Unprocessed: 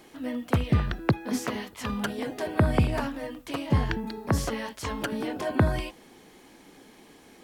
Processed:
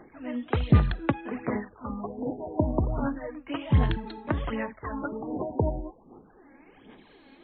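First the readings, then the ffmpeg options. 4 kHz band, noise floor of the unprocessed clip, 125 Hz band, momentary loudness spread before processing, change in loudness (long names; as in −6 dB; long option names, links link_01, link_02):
−6.5 dB, −54 dBFS, 0.0 dB, 9 LU, −0.5 dB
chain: -af "aphaser=in_gain=1:out_gain=1:delay=3.7:decay=0.58:speed=1.3:type=sinusoidal,afftfilt=real='re*lt(b*sr/1024,970*pow(4400/970,0.5+0.5*sin(2*PI*0.31*pts/sr)))':imag='im*lt(b*sr/1024,970*pow(4400/970,0.5+0.5*sin(2*PI*0.31*pts/sr)))':win_size=1024:overlap=0.75,volume=-3dB"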